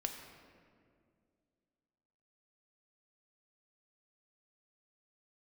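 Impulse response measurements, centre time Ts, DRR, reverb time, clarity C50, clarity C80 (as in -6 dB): 43 ms, 3.5 dB, 2.2 s, 6.0 dB, 6.5 dB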